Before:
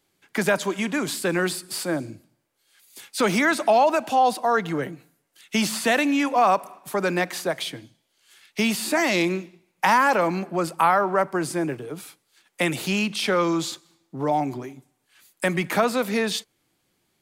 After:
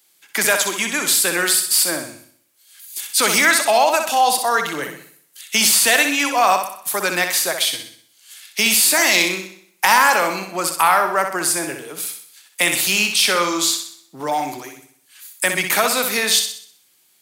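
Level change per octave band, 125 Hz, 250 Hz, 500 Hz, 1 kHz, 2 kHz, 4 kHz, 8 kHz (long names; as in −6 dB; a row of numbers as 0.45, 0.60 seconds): −6.0, −3.5, +0.5, +4.0, +8.0, +12.0, +16.0 decibels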